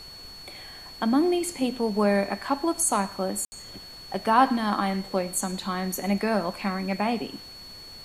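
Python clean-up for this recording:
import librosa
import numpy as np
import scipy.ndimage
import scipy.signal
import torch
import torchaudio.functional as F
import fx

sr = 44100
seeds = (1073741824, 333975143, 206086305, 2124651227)

y = fx.notch(x, sr, hz=4400.0, q=30.0)
y = fx.fix_ambience(y, sr, seeds[0], print_start_s=7.42, print_end_s=7.92, start_s=3.45, end_s=3.52)
y = fx.noise_reduce(y, sr, print_start_s=7.42, print_end_s=7.92, reduce_db=28.0)
y = fx.fix_echo_inverse(y, sr, delay_ms=113, level_db=-23.0)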